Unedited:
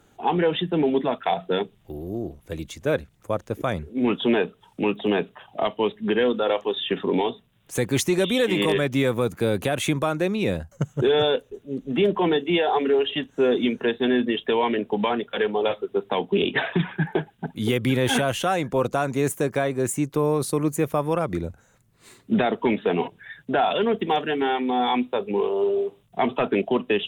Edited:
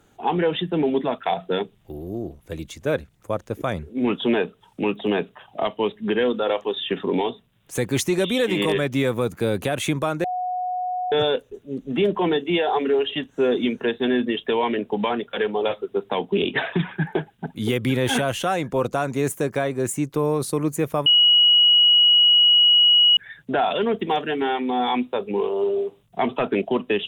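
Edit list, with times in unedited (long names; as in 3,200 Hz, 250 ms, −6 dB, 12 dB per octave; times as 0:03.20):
0:10.24–0:11.12: beep over 730 Hz −23 dBFS
0:21.06–0:23.17: beep over 2,910 Hz −11.5 dBFS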